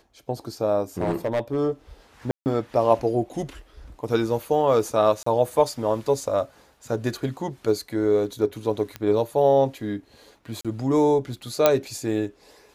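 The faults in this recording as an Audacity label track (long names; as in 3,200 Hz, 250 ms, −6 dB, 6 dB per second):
0.980000	1.580000	clipping −19 dBFS
2.310000	2.460000	drop-out 149 ms
5.230000	5.260000	drop-out 34 ms
8.960000	8.960000	click −16 dBFS
10.610000	10.650000	drop-out 36 ms
11.660000	11.660000	click −2 dBFS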